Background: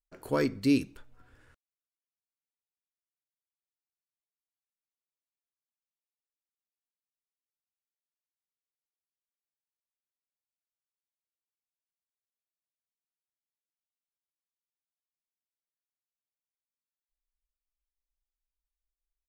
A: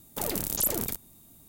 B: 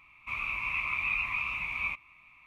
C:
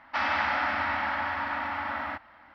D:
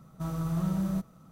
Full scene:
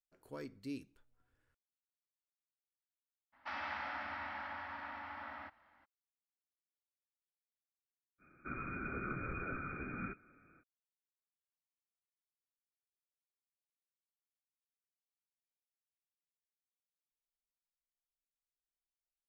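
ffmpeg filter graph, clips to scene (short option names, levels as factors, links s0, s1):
-filter_complex "[0:a]volume=0.112[s0];[2:a]lowpass=f=2100:t=q:w=0.5098,lowpass=f=2100:t=q:w=0.6013,lowpass=f=2100:t=q:w=0.9,lowpass=f=2100:t=q:w=2.563,afreqshift=-2500[s1];[3:a]atrim=end=2.54,asetpts=PTS-STARTPTS,volume=0.178,afade=t=in:d=0.02,afade=t=out:st=2.52:d=0.02,adelay=3320[s2];[s1]atrim=end=2.46,asetpts=PTS-STARTPTS,volume=0.75,afade=t=in:d=0.05,afade=t=out:st=2.41:d=0.05,adelay=360738S[s3];[s0][s2][s3]amix=inputs=3:normalize=0"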